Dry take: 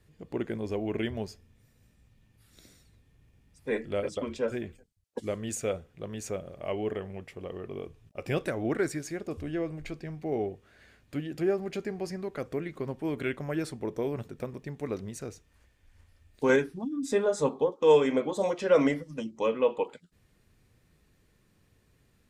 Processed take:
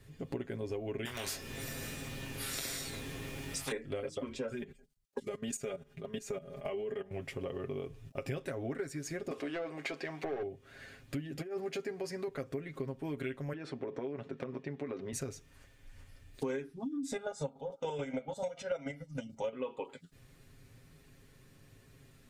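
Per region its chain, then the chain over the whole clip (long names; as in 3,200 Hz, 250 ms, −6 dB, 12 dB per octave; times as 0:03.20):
0:01.05–0:03.72: double-tracking delay 22 ms −6 dB + every bin compressed towards the loudest bin 4 to 1
0:04.53–0:07.11: comb filter 4.9 ms, depth 77% + output level in coarse steps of 17 dB
0:09.31–0:10.43: high-pass filter 310 Hz + mid-hump overdrive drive 18 dB, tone 2,700 Hz, clips at −21.5 dBFS
0:11.39–0:12.28: high-pass filter 270 Hz 6 dB per octave + compressor whose output falls as the input rises −33 dBFS, ratio −0.5
0:13.53–0:15.13: band-pass filter 210–3,100 Hz + downward compressor 3 to 1, threshold −35 dBFS
0:17.12–0:19.53: comb filter 1.4 ms, depth 99% + square-wave tremolo 6.9 Hz, depth 60%, duty 35%
whole clip: parametric band 920 Hz −2 dB; comb filter 7.4 ms, depth 65%; downward compressor 6 to 1, threshold −41 dBFS; level +5 dB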